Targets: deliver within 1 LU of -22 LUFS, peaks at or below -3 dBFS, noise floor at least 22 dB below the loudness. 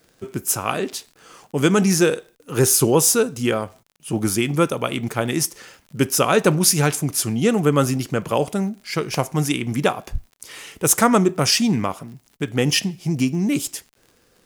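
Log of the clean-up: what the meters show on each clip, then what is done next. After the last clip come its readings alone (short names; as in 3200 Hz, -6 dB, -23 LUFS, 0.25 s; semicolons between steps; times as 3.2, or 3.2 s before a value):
ticks 28/s; loudness -20.0 LUFS; peak -1.5 dBFS; loudness target -22.0 LUFS
-> de-click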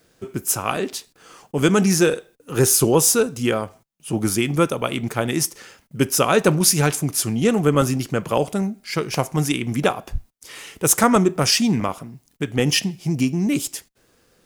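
ticks 0.83/s; loudness -20.0 LUFS; peak -1.5 dBFS; loudness target -22.0 LUFS
-> gain -2 dB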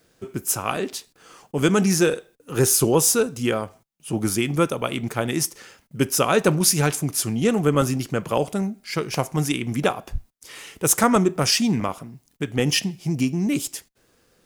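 loudness -22.0 LUFS; peak -3.5 dBFS; noise floor -64 dBFS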